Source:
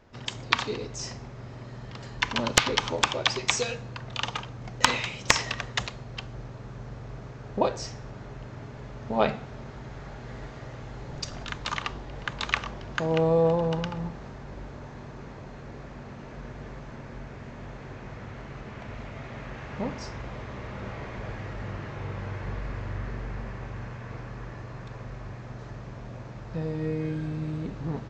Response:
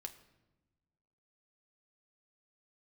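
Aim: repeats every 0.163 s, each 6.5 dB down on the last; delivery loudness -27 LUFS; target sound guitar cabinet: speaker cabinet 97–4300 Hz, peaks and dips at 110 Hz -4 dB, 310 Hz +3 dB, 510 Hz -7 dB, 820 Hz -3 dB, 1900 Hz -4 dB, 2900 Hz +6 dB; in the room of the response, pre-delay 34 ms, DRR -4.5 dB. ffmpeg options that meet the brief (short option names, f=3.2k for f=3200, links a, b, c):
-filter_complex "[0:a]aecho=1:1:163|326|489|652|815|978:0.473|0.222|0.105|0.0491|0.0231|0.0109,asplit=2[a][b];[1:a]atrim=start_sample=2205,adelay=34[c];[b][c]afir=irnorm=-1:irlink=0,volume=8.5dB[d];[a][d]amix=inputs=2:normalize=0,highpass=97,equalizer=f=110:t=q:w=4:g=-4,equalizer=f=310:t=q:w=4:g=3,equalizer=f=510:t=q:w=4:g=-7,equalizer=f=820:t=q:w=4:g=-3,equalizer=f=1.9k:t=q:w=4:g=-4,equalizer=f=2.9k:t=q:w=4:g=6,lowpass=f=4.3k:w=0.5412,lowpass=f=4.3k:w=1.3066,volume=-2.5dB"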